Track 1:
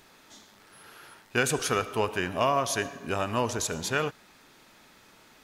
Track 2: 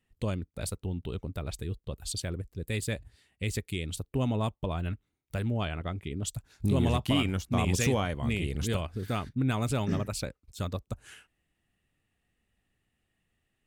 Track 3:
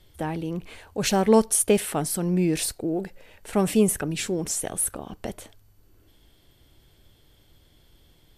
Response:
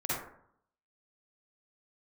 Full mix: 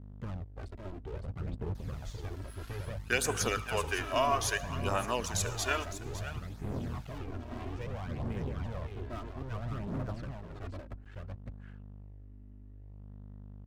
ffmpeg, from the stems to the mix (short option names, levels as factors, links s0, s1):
-filter_complex "[0:a]highpass=f=710:p=1,adelay=1750,volume=1.19,asplit=2[s0][s1];[s1]volume=0.237[s2];[1:a]acompressor=threshold=0.0398:ratio=6,lowpass=1400,asoftclip=type=hard:threshold=0.0158,volume=1.26,asplit=2[s3][s4];[s4]volume=0.668[s5];[s2][s5]amix=inputs=2:normalize=0,aecho=0:1:559:1[s6];[s0][s3][s6]amix=inputs=3:normalize=0,aeval=exprs='val(0)+0.00708*(sin(2*PI*50*n/s)+sin(2*PI*2*50*n/s)/2+sin(2*PI*3*50*n/s)/3+sin(2*PI*4*50*n/s)/4+sin(2*PI*5*50*n/s)/5)':c=same,flanger=delay=0.1:depth=3:regen=2:speed=0.6:shape=sinusoidal,aeval=exprs='sgn(val(0))*max(abs(val(0))-0.00237,0)':c=same"